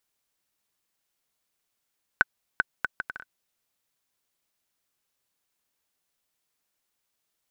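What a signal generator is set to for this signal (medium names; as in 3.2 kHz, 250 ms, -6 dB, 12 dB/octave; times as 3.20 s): bouncing ball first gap 0.39 s, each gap 0.63, 1.51 kHz, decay 25 ms -4.5 dBFS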